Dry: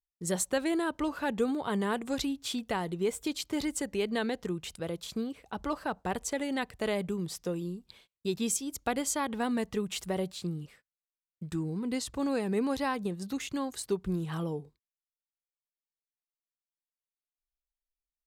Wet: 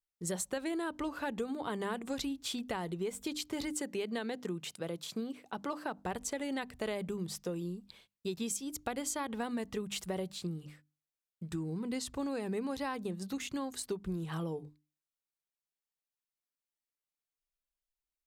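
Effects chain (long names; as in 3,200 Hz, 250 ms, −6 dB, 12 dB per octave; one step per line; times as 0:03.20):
0:03.71–0:05.98: high-pass filter 130 Hz 24 dB per octave
mains-hum notches 50/100/150/200/250/300 Hz
downward compressor, threshold −31 dBFS, peak gain reduction 8 dB
level −1.5 dB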